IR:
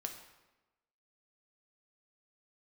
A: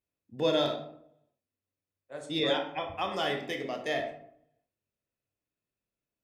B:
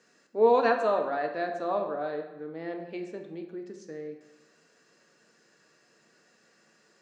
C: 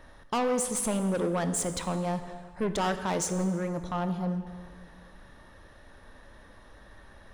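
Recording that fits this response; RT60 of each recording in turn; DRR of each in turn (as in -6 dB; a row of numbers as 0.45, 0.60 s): B; 0.70, 1.1, 1.8 s; 3.0, 3.5, 8.5 dB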